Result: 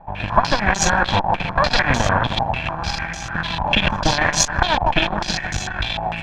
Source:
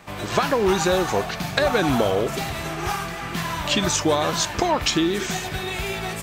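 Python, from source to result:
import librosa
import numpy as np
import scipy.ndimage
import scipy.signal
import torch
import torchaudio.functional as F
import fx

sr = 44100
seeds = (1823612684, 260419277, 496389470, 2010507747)

p1 = fx.lower_of_two(x, sr, delay_ms=1.2)
p2 = fx.low_shelf(p1, sr, hz=100.0, db=11.0)
p3 = p2 + fx.echo_feedback(p2, sr, ms=156, feedback_pct=56, wet_db=-8.0, dry=0)
p4 = fx.cheby_harmonics(p3, sr, harmonics=(8,), levels_db=(-16,), full_scale_db=-2.0)
p5 = fx.filter_held_lowpass(p4, sr, hz=6.7, low_hz=840.0, high_hz=6400.0)
y = p5 * 10.0 ** (-1.5 / 20.0)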